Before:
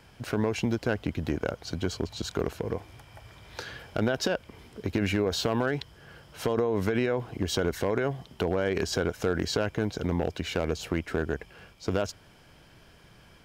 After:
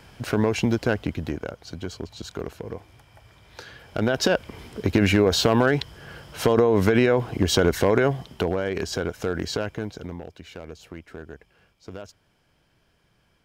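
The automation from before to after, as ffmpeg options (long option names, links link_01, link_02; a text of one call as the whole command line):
ffmpeg -i in.wav -af "volume=16.5dB,afade=type=out:start_time=0.83:duration=0.65:silence=0.375837,afade=type=in:start_time=3.8:duration=0.58:silence=0.281838,afade=type=out:start_time=8.02:duration=0.62:silence=0.421697,afade=type=out:start_time=9.57:duration=0.67:silence=0.281838" out.wav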